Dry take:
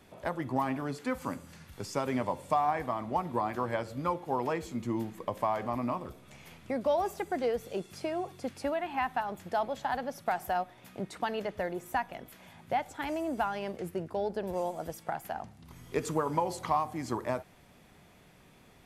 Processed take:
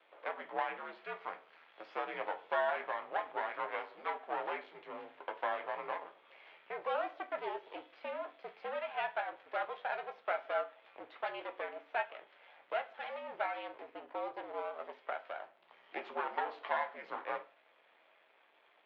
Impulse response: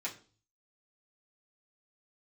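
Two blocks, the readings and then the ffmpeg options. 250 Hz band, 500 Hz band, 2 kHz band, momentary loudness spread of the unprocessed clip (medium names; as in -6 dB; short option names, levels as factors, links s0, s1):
-20.0 dB, -6.5 dB, -0.5 dB, 10 LU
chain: -filter_complex "[0:a]aeval=exprs='max(val(0),0)':c=same,asplit=2[s0][s1];[1:a]atrim=start_sample=2205,adelay=10[s2];[s1][s2]afir=irnorm=-1:irlink=0,volume=0.447[s3];[s0][s3]amix=inputs=2:normalize=0,highpass=f=570:t=q:w=0.5412,highpass=f=570:t=q:w=1.307,lowpass=f=3500:t=q:w=0.5176,lowpass=f=3500:t=q:w=0.7071,lowpass=f=3500:t=q:w=1.932,afreqshift=-74,volume=0.891"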